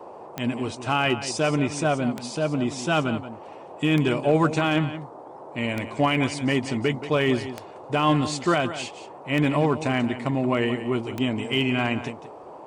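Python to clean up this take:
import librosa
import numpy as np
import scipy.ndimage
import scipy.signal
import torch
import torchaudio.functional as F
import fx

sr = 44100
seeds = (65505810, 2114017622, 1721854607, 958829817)

y = fx.fix_declip(x, sr, threshold_db=-11.5)
y = fx.fix_declick_ar(y, sr, threshold=10.0)
y = fx.noise_reduce(y, sr, print_start_s=12.15, print_end_s=12.65, reduce_db=28.0)
y = fx.fix_echo_inverse(y, sr, delay_ms=177, level_db=-12.5)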